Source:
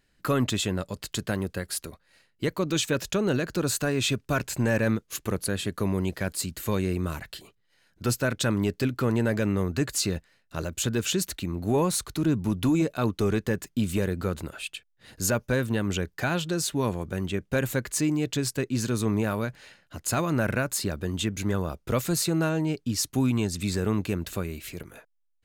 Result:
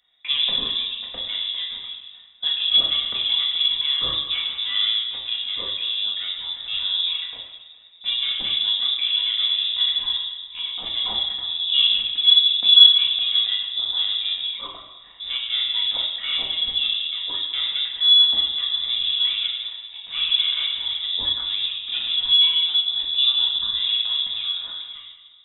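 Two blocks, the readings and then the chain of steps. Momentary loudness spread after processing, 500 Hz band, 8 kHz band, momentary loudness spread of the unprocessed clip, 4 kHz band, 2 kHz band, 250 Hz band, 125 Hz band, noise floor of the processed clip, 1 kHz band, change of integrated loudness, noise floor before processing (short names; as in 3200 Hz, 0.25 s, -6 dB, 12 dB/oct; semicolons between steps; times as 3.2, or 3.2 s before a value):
14 LU, under -20 dB, under -40 dB, 8 LU, +21.0 dB, -2.0 dB, under -25 dB, under -25 dB, -46 dBFS, -7.5 dB, +9.0 dB, -70 dBFS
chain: one diode to ground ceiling -21 dBFS; notch 750 Hz, Q 12; in parallel at 0 dB: level quantiser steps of 12 dB; on the sum: small resonant body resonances 320/840 Hz, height 16 dB, ringing for 45 ms; on a send: thinning echo 0.208 s, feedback 53%, level -16 dB; on the sum: shoebox room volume 500 m³, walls mixed, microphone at 1.9 m; inverted band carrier 3700 Hz; gain -10 dB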